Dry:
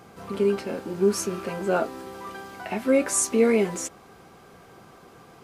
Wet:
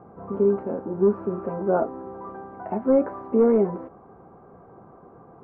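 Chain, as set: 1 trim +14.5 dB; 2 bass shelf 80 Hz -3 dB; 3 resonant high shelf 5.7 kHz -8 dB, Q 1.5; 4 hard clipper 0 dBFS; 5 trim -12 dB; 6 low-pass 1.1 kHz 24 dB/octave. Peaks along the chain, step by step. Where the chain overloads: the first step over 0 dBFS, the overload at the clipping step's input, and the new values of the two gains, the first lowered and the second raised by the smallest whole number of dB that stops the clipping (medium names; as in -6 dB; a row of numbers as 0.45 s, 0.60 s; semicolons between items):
+6.0 dBFS, +6.0 dBFS, +6.0 dBFS, 0.0 dBFS, -12.0 dBFS, -11.0 dBFS; step 1, 6.0 dB; step 1 +8.5 dB, step 5 -6 dB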